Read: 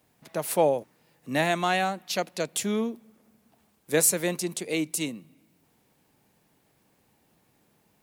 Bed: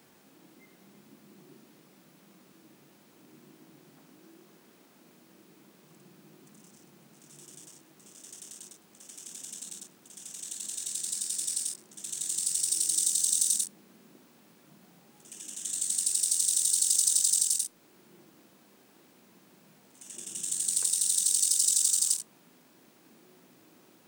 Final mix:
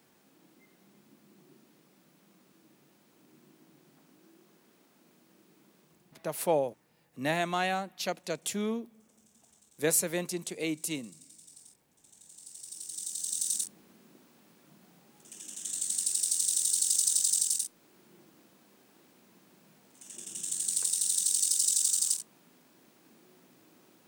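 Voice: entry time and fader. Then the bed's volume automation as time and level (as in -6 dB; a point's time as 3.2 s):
5.90 s, -5.0 dB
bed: 5.8 s -5 dB
6.57 s -22.5 dB
12.27 s -22.5 dB
13.68 s -2 dB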